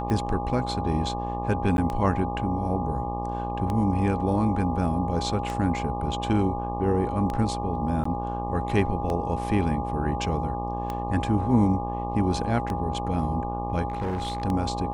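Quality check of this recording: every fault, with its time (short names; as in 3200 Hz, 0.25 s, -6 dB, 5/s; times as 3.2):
buzz 60 Hz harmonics 20 -32 dBFS
tick 33 1/3 rpm -17 dBFS
tone 820 Hz -31 dBFS
1.77–1.78 gap 11 ms
8.04–8.05 gap 14 ms
13.88–14.44 clipped -24.5 dBFS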